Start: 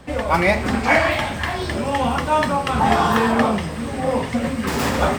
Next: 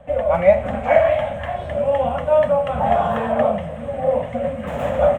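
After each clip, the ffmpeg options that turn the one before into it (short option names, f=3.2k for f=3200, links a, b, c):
-af "firequalizer=gain_entry='entry(180,0);entry(370,-15);entry(570,14);entry(920,-4);entry(3200,-7);entry(4700,-29);entry(6700,-15);entry(15000,-17)':delay=0.05:min_phase=1,volume=-3.5dB"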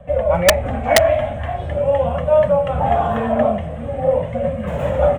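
-filter_complex "[0:a]acrossover=split=370[a][b];[a]aeval=exprs='0.188*sin(PI/2*1.41*val(0)/0.188)':c=same[c];[c][b]amix=inputs=2:normalize=0,flanger=delay=1.7:depth=1.3:regen=-48:speed=0.44:shape=triangular,aeval=exprs='(mod(2.24*val(0)+1,2)-1)/2.24':c=same,volume=3.5dB"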